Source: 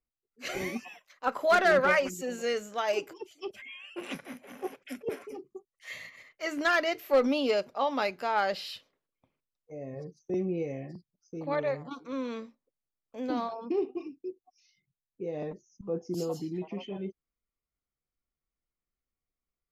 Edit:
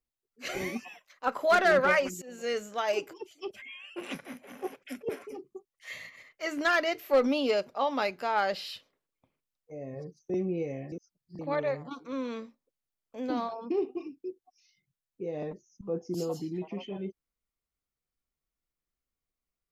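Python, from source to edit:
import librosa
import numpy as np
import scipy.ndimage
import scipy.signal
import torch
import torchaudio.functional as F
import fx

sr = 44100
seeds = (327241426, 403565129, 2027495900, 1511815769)

y = fx.edit(x, sr, fx.fade_in_from(start_s=2.22, length_s=0.34, floor_db=-18.5),
    fx.reverse_span(start_s=10.92, length_s=0.47), tone=tone)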